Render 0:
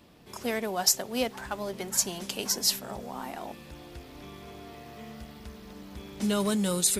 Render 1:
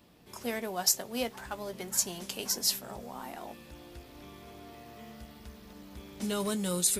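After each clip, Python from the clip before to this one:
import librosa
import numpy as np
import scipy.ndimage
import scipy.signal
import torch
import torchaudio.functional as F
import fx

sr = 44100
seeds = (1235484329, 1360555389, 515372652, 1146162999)

y = fx.high_shelf(x, sr, hz=10000.0, db=5.5)
y = fx.doubler(y, sr, ms=17.0, db=-12)
y = y * librosa.db_to_amplitude(-4.5)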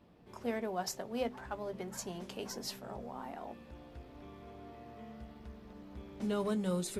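y = fx.lowpass(x, sr, hz=1100.0, slope=6)
y = fx.hum_notches(y, sr, base_hz=50, count=7)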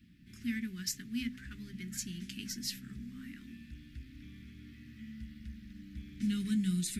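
y = scipy.signal.sosfilt(scipy.signal.ellip(3, 1.0, 50, [260.0, 1800.0], 'bandstop', fs=sr, output='sos'), x)
y = y * librosa.db_to_amplitude(4.5)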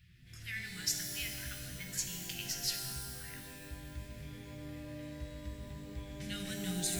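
y = fx.brickwall_bandstop(x, sr, low_hz=180.0, high_hz=1000.0)
y = fx.rev_shimmer(y, sr, seeds[0], rt60_s=1.9, semitones=12, shimmer_db=-2, drr_db=3.5)
y = y * librosa.db_to_amplitude(2.5)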